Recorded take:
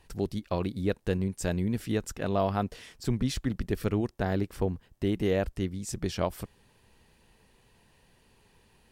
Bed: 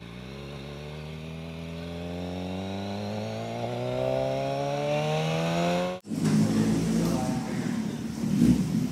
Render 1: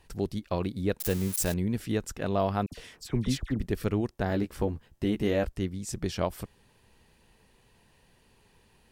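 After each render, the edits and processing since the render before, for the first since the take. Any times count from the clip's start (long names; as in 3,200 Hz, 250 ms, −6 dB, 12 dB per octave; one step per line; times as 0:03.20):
0:01.00–0:01.54: spike at every zero crossing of −24 dBFS
0:02.66–0:03.60: all-pass dispersion lows, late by 58 ms, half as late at 1,800 Hz
0:04.28–0:05.46: double-tracking delay 14 ms −6 dB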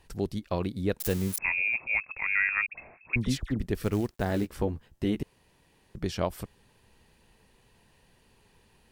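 0:01.38–0:03.16: voice inversion scrambler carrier 2,600 Hz
0:03.75–0:04.47: log-companded quantiser 6 bits
0:05.23–0:05.95: fill with room tone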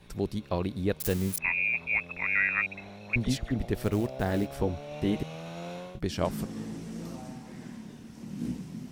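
mix in bed −13.5 dB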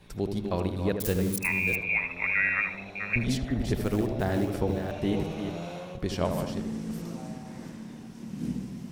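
delay that plays each chunk backwards 351 ms, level −7 dB
on a send: feedback echo with a low-pass in the loop 77 ms, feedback 54%, low-pass 1,400 Hz, level −6 dB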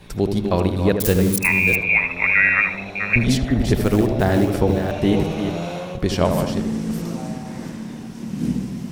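level +10 dB
brickwall limiter −3 dBFS, peak gain reduction 1 dB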